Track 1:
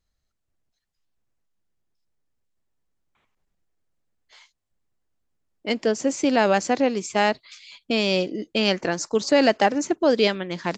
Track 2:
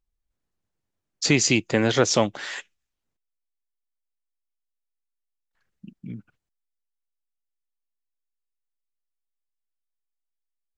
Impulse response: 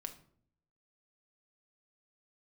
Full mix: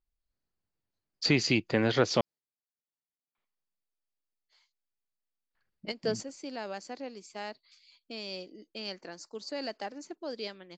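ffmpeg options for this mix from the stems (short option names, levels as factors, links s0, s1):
-filter_complex "[0:a]highpass=180,adelay=200,volume=0.376[s0];[1:a]lowpass=3600,volume=0.531,asplit=3[s1][s2][s3];[s1]atrim=end=2.21,asetpts=PTS-STARTPTS,afade=t=out:st=2.206:d=0.004:c=hsin[s4];[s2]atrim=start=2.21:end=3.38,asetpts=PTS-STARTPTS,volume=0[s5];[s3]atrim=start=3.38,asetpts=PTS-STARTPTS,afade=t=in:d=0.004:c=hsin[s6];[s4][s5][s6]concat=n=3:v=0:a=1,asplit=2[s7][s8];[s8]apad=whole_len=483993[s9];[s0][s9]sidechaingate=range=0.282:threshold=0.00501:ratio=16:detection=peak[s10];[s10][s7]amix=inputs=2:normalize=0,equalizer=f=4600:w=5.8:g=10.5"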